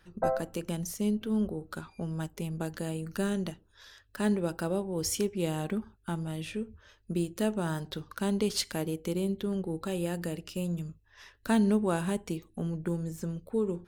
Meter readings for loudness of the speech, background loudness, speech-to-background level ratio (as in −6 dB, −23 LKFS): −32.5 LKFS, −33.0 LKFS, 0.5 dB